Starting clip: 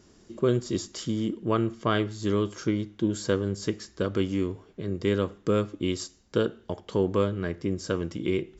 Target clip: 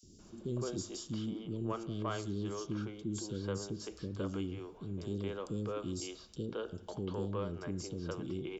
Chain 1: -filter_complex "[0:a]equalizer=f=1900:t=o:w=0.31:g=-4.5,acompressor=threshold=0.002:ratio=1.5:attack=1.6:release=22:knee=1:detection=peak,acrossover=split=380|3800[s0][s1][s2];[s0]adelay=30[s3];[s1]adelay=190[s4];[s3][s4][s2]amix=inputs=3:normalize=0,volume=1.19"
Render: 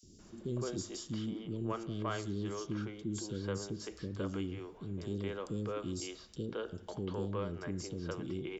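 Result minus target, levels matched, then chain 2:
2 kHz band +2.5 dB
-filter_complex "[0:a]equalizer=f=1900:t=o:w=0.31:g=-13.5,acompressor=threshold=0.002:ratio=1.5:attack=1.6:release=22:knee=1:detection=peak,acrossover=split=380|3800[s0][s1][s2];[s0]adelay=30[s3];[s1]adelay=190[s4];[s3][s4][s2]amix=inputs=3:normalize=0,volume=1.19"

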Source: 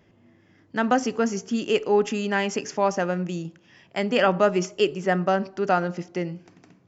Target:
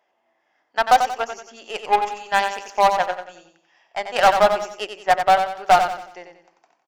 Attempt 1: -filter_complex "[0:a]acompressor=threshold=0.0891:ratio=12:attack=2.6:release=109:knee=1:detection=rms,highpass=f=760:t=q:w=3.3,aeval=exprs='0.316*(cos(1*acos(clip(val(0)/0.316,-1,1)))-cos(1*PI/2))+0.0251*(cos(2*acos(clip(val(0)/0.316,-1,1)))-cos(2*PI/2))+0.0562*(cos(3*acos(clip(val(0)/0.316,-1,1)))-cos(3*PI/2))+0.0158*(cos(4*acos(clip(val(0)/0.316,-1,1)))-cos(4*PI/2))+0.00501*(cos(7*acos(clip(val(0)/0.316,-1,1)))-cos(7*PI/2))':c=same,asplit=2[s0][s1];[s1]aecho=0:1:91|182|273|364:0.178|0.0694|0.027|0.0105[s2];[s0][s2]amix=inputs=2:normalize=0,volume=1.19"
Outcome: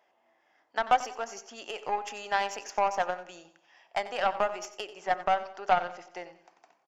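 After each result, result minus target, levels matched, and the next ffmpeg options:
compression: peak gain reduction +10.5 dB; echo-to-direct -7.5 dB
-filter_complex "[0:a]highpass=f=760:t=q:w=3.3,aeval=exprs='0.316*(cos(1*acos(clip(val(0)/0.316,-1,1)))-cos(1*PI/2))+0.0251*(cos(2*acos(clip(val(0)/0.316,-1,1)))-cos(2*PI/2))+0.0562*(cos(3*acos(clip(val(0)/0.316,-1,1)))-cos(3*PI/2))+0.0158*(cos(4*acos(clip(val(0)/0.316,-1,1)))-cos(4*PI/2))+0.00501*(cos(7*acos(clip(val(0)/0.316,-1,1)))-cos(7*PI/2))':c=same,asplit=2[s0][s1];[s1]aecho=0:1:91|182|273|364:0.178|0.0694|0.027|0.0105[s2];[s0][s2]amix=inputs=2:normalize=0,volume=1.19"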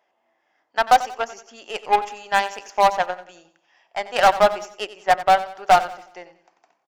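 echo-to-direct -7.5 dB
-filter_complex "[0:a]highpass=f=760:t=q:w=3.3,aeval=exprs='0.316*(cos(1*acos(clip(val(0)/0.316,-1,1)))-cos(1*PI/2))+0.0251*(cos(2*acos(clip(val(0)/0.316,-1,1)))-cos(2*PI/2))+0.0562*(cos(3*acos(clip(val(0)/0.316,-1,1)))-cos(3*PI/2))+0.0158*(cos(4*acos(clip(val(0)/0.316,-1,1)))-cos(4*PI/2))+0.00501*(cos(7*acos(clip(val(0)/0.316,-1,1)))-cos(7*PI/2))':c=same,asplit=2[s0][s1];[s1]aecho=0:1:91|182|273|364:0.422|0.164|0.0641|0.025[s2];[s0][s2]amix=inputs=2:normalize=0,volume=1.19"

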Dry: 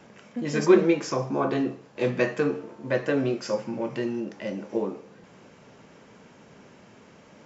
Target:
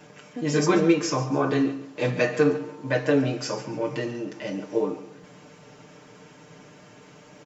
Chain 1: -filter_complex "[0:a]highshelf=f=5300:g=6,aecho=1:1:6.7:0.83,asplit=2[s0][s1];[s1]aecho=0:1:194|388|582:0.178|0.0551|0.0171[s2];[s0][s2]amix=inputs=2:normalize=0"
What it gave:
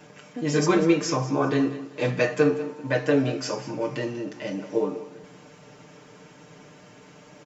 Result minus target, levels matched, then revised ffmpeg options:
echo 55 ms late
-filter_complex "[0:a]highshelf=f=5300:g=6,aecho=1:1:6.7:0.83,asplit=2[s0][s1];[s1]aecho=0:1:139|278|417:0.178|0.0551|0.0171[s2];[s0][s2]amix=inputs=2:normalize=0"

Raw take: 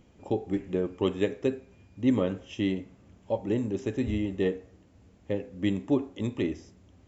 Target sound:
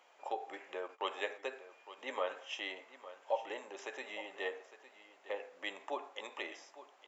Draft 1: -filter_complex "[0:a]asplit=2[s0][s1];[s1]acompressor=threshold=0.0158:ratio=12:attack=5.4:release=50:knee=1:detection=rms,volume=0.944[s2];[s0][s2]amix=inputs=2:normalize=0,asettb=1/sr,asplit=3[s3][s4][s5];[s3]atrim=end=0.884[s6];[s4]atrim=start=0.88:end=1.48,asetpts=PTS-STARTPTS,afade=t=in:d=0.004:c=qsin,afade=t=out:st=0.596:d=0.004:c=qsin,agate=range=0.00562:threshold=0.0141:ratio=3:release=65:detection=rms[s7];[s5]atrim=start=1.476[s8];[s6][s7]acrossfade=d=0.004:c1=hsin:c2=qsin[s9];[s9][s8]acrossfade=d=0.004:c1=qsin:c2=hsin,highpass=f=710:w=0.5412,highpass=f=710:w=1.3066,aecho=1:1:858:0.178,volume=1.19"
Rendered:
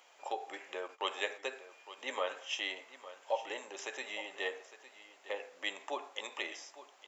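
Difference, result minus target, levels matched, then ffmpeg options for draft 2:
8 kHz band +6.5 dB
-filter_complex "[0:a]asplit=2[s0][s1];[s1]acompressor=threshold=0.0158:ratio=12:attack=5.4:release=50:knee=1:detection=rms,volume=0.944[s2];[s0][s2]amix=inputs=2:normalize=0,asettb=1/sr,asplit=3[s3][s4][s5];[s3]atrim=end=0.884[s6];[s4]atrim=start=0.88:end=1.48,asetpts=PTS-STARTPTS,afade=t=in:d=0.004:c=qsin,afade=t=out:st=0.596:d=0.004:c=qsin,agate=range=0.00562:threshold=0.0141:ratio=3:release=65:detection=rms[s7];[s5]atrim=start=1.476[s8];[s6][s7]acrossfade=d=0.004:c1=hsin:c2=qsin[s9];[s9][s8]acrossfade=d=0.004:c1=qsin:c2=hsin,highpass=f=710:w=0.5412,highpass=f=710:w=1.3066,highshelf=f=3000:g=-10.5,aecho=1:1:858:0.178,volume=1.19"

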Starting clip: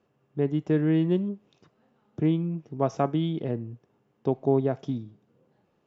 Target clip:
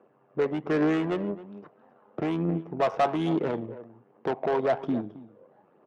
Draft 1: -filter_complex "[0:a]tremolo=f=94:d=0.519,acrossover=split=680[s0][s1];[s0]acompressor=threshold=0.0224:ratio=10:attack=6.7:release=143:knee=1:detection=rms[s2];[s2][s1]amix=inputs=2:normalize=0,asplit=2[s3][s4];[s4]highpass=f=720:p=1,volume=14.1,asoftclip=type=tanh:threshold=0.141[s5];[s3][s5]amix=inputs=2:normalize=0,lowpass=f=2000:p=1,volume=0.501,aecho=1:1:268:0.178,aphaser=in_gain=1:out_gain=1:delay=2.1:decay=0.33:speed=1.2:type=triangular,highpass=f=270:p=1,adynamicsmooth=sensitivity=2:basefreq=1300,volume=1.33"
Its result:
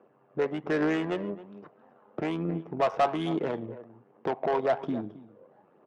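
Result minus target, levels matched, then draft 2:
compression: peak gain reduction +5.5 dB
-filter_complex "[0:a]tremolo=f=94:d=0.519,acrossover=split=680[s0][s1];[s0]acompressor=threshold=0.0447:ratio=10:attack=6.7:release=143:knee=1:detection=rms[s2];[s2][s1]amix=inputs=2:normalize=0,asplit=2[s3][s4];[s4]highpass=f=720:p=1,volume=14.1,asoftclip=type=tanh:threshold=0.141[s5];[s3][s5]amix=inputs=2:normalize=0,lowpass=f=2000:p=1,volume=0.501,aecho=1:1:268:0.178,aphaser=in_gain=1:out_gain=1:delay=2.1:decay=0.33:speed=1.2:type=triangular,highpass=f=270:p=1,adynamicsmooth=sensitivity=2:basefreq=1300,volume=1.33"

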